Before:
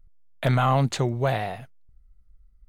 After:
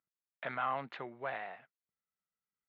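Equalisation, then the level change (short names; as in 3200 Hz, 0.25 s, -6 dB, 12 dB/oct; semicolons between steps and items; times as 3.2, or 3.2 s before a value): Chebyshev band-pass 180–1800 Hz, order 2; air absorption 340 m; differentiator; +8.0 dB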